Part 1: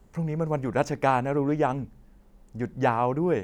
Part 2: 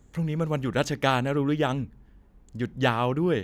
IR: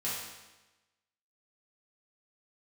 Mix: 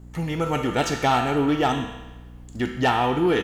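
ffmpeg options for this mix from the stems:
-filter_complex "[0:a]aeval=exprs='val(0)+0.00631*(sin(2*PI*60*n/s)+sin(2*PI*2*60*n/s)/2+sin(2*PI*3*60*n/s)/3+sin(2*PI*4*60*n/s)/4+sin(2*PI*5*60*n/s)/5)':c=same,volume=1.19,asplit=2[s0][s1];[s1]volume=0.2[s2];[1:a]highpass=f=1100:p=1,dynaudnorm=f=110:g=3:m=5.62,volume=-1,adelay=1.7,volume=0.355,asplit=2[s3][s4];[s4]volume=0.668[s5];[2:a]atrim=start_sample=2205[s6];[s2][s5]amix=inputs=2:normalize=0[s7];[s7][s6]afir=irnorm=-1:irlink=0[s8];[s0][s3][s8]amix=inputs=3:normalize=0,asoftclip=type=tanh:threshold=0.266"

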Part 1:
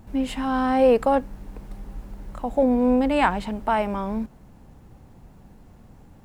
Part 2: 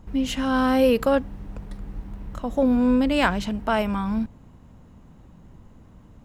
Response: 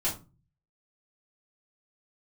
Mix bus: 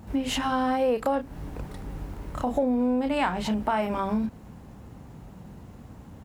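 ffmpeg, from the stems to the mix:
-filter_complex "[0:a]volume=1.33,asplit=2[s0][s1];[1:a]volume=-1,adelay=30,volume=1.19[s2];[s1]apad=whole_len=276791[s3];[s2][s3]sidechaincompress=threshold=0.0708:ratio=8:attack=16:release=171[s4];[s0][s4]amix=inputs=2:normalize=0,highpass=55,acompressor=threshold=0.0631:ratio=3"

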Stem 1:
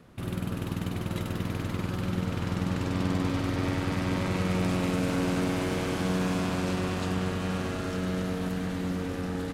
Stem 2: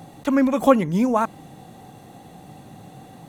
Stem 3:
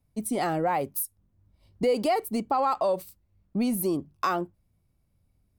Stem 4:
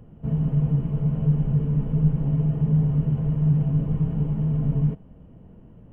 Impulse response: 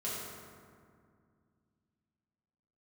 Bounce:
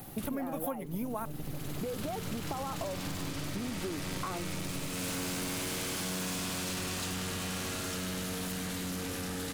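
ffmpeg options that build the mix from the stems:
-filter_complex "[0:a]crystalizer=i=6.5:c=0,asoftclip=type=tanh:threshold=0.0422,volume=0.708[s0];[1:a]aexciter=amount=8.6:drive=8.4:freq=10000,volume=0.376,asplit=2[s1][s2];[2:a]volume=1.12[s3];[3:a]acompressor=threshold=0.0224:ratio=2.5,aeval=exprs='0.0944*(cos(1*acos(clip(val(0)/0.0944,-1,1)))-cos(1*PI/2))+0.0376*(cos(6*acos(clip(val(0)/0.0944,-1,1)))-cos(6*PI/2))':c=same,volume=0.398[s4];[s2]apad=whole_len=420358[s5];[s0][s5]sidechaincompress=threshold=0.0141:ratio=8:attack=6.7:release=751[s6];[s3][s4]amix=inputs=2:normalize=0,lowpass=1500,acompressor=threshold=0.0398:ratio=6,volume=1[s7];[s6][s1][s7]amix=inputs=3:normalize=0,acompressor=threshold=0.0224:ratio=6"

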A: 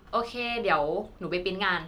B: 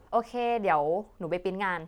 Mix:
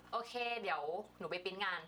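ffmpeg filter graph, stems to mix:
-filter_complex "[0:a]volume=0.631[s0];[1:a]tremolo=f=19:d=0.75,alimiter=limit=0.075:level=0:latency=1,volume=-1,volume=1.41[s1];[s0][s1]amix=inputs=2:normalize=0,aeval=exprs='val(0)+0.00562*(sin(2*PI*60*n/s)+sin(2*PI*2*60*n/s)/2+sin(2*PI*3*60*n/s)/3+sin(2*PI*4*60*n/s)/4+sin(2*PI*5*60*n/s)/5)':c=same,highpass=f=1000:p=1,acompressor=threshold=0.00794:ratio=2"

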